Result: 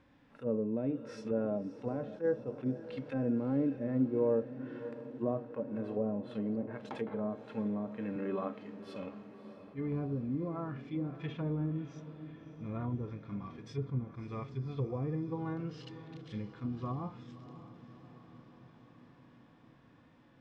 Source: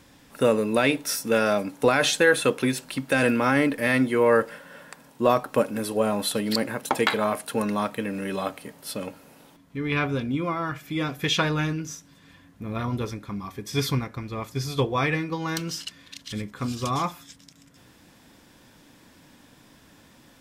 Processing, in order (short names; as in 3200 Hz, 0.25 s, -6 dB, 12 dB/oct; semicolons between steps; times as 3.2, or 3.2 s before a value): low-pass opened by the level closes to 2300 Hz, open at -20.5 dBFS; harmonic-percussive split percussive -11 dB; treble ducked by the level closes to 510 Hz, closed at -23.5 dBFS; 8.16–8.82 speaker cabinet 190–7800 Hz, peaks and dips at 260 Hz +7 dB, 420 Hz +8 dB, 1200 Hz +6 dB; on a send: diffused feedback echo 0.612 s, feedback 65%, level -14 dB; on the sum: attack slew limiter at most 310 dB/s; gain -7 dB